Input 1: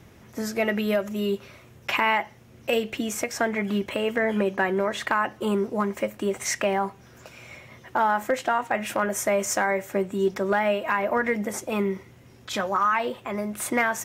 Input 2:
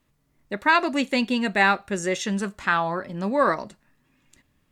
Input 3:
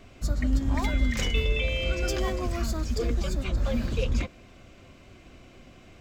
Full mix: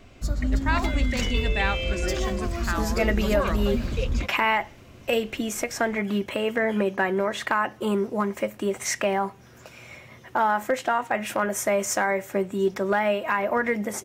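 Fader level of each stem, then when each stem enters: 0.0, −8.0, +0.5 decibels; 2.40, 0.00, 0.00 seconds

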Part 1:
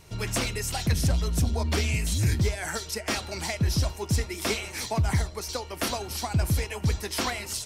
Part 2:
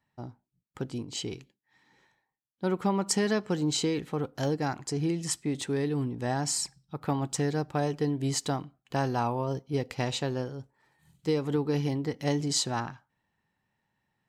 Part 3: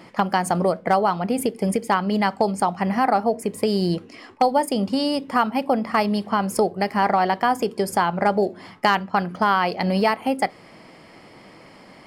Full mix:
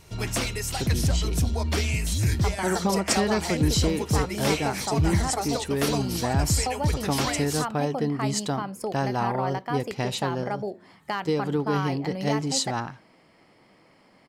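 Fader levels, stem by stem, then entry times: +0.5, +2.0, −11.5 decibels; 0.00, 0.00, 2.25 seconds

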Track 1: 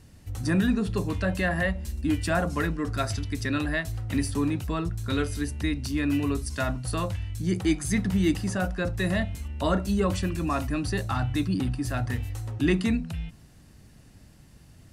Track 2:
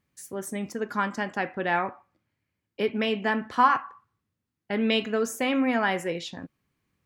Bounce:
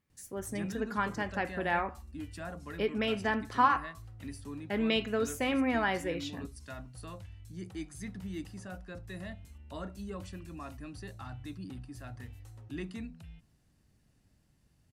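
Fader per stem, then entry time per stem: −16.5, −5.0 decibels; 0.10, 0.00 seconds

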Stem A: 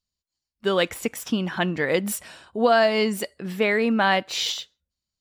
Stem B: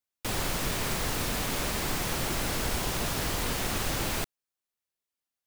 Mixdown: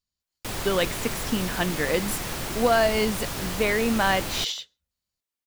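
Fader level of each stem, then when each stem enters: −2.5, −1.0 decibels; 0.00, 0.20 seconds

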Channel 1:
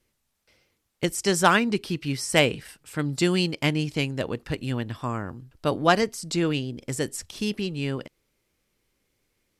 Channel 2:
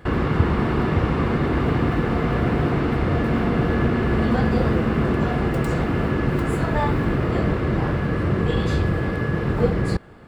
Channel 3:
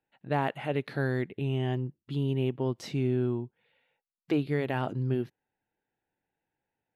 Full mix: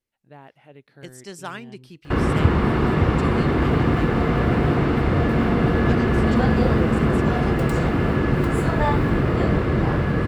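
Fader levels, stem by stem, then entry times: −15.0, +1.5, −16.5 decibels; 0.00, 2.05, 0.00 seconds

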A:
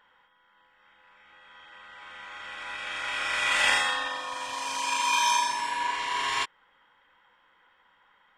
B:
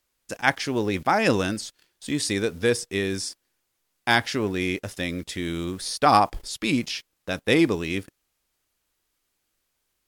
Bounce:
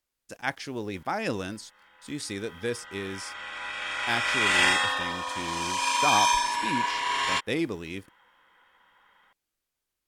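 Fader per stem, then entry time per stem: +1.5, −9.0 decibels; 0.95, 0.00 seconds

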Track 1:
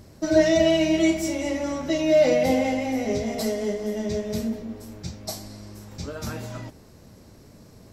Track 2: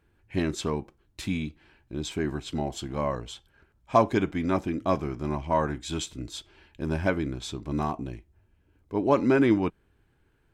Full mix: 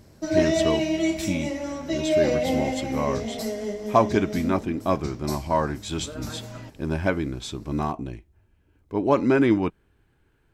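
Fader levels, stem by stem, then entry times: −3.5, +2.0 decibels; 0.00, 0.00 seconds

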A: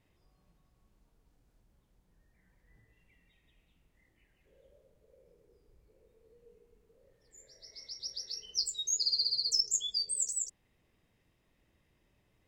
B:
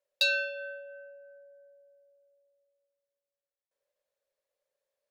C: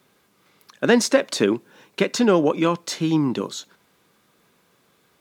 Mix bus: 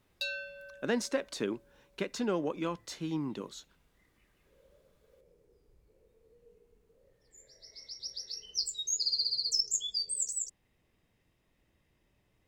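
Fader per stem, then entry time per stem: −0.5, −10.0, −14.5 decibels; 0.00, 0.00, 0.00 seconds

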